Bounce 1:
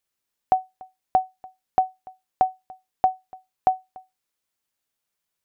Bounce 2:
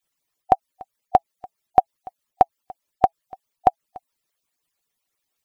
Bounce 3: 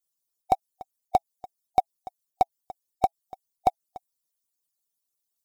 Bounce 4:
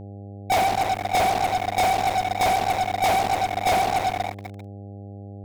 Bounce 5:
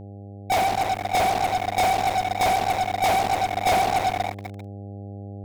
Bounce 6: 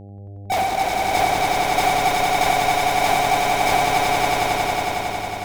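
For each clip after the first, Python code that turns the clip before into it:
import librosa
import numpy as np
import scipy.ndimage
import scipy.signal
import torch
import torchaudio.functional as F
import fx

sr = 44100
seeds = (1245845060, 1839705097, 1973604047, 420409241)

y1 = fx.hpss_only(x, sr, part='percussive')
y1 = fx.notch(y1, sr, hz=1500.0, q=12.0)
y1 = y1 * librosa.db_to_amplitude(7.5)
y2 = fx.high_shelf(y1, sr, hz=2800.0, db=10.5)
y2 = fx.leveller(y2, sr, passes=2)
y2 = fx.peak_eq(y2, sr, hz=2100.0, db=-13.5, octaves=1.4)
y2 = y2 * librosa.db_to_amplitude(-7.5)
y3 = fx.rev_double_slope(y2, sr, seeds[0], early_s=0.38, late_s=2.8, knee_db=-18, drr_db=-3.0)
y3 = fx.fuzz(y3, sr, gain_db=40.0, gate_db=-43.0)
y3 = fx.dmg_buzz(y3, sr, base_hz=100.0, harmonics=8, level_db=-33.0, tilt_db=-6, odd_only=False)
y3 = y3 * librosa.db_to_amplitude(-5.0)
y4 = fx.rider(y3, sr, range_db=10, speed_s=2.0)
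y5 = fx.echo_swell(y4, sr, ms=91, loudest=5, wet_db=-4)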